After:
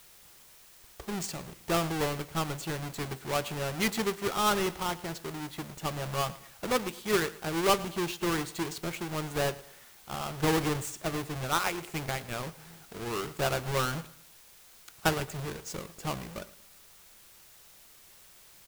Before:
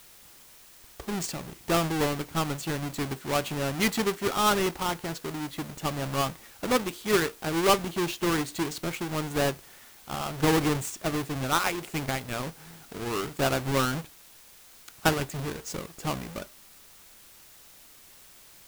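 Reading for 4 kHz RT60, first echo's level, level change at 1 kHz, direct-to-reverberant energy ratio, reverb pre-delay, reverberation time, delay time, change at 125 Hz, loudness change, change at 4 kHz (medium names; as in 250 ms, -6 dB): no reverb, -19.0 dB, -3.0 dB, no reverb, no reverb, no reverb, 111 ms, -3.0 dB, -3.5 dB, -3.0 dB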